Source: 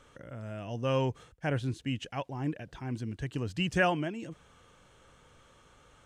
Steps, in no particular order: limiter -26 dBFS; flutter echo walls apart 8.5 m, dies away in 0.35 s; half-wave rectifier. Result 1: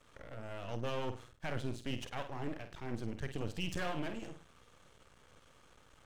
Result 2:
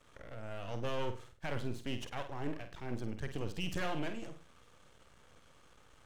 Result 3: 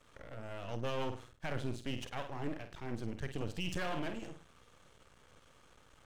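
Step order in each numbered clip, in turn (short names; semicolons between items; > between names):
limiter > flutter echo > half-wave rectifier; half-wave rectifier > limiter > flutter echo; flutter echo > half-wave rectifier > limiter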